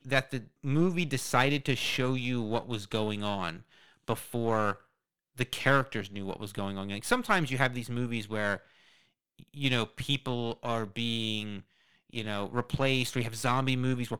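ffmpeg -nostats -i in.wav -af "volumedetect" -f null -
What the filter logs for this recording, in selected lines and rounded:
mean_volume: -31.3 dB
max_volume: -7.1 dB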